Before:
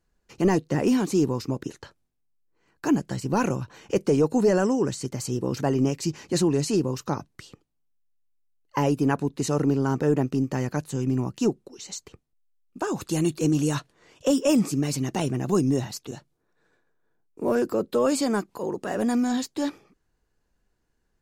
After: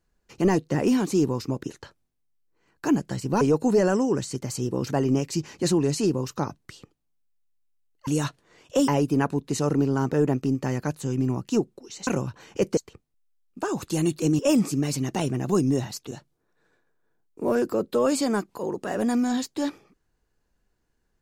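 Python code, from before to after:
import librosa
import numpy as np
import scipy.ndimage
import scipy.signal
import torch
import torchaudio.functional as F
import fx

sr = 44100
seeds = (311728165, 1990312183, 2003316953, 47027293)

y = fx.edit(x, sr, fx.move(start_s=3.41, length_s=0.7, to_s=11.96),
    fx.move(start_s=13.58, length_s=0.81, to_s=8.77), tone=tone)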